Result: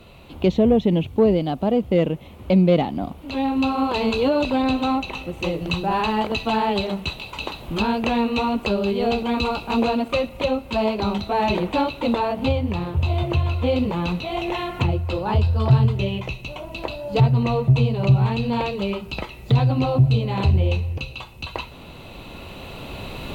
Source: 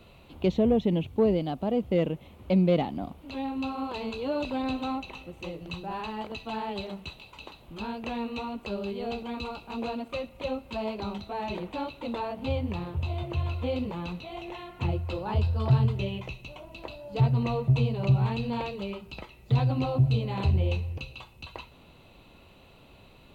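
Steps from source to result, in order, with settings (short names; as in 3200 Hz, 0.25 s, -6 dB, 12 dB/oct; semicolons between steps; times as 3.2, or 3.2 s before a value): recorder AGC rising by 6 dB/s; gain +6.5 dB; SBC 192 kbps 48000 Hz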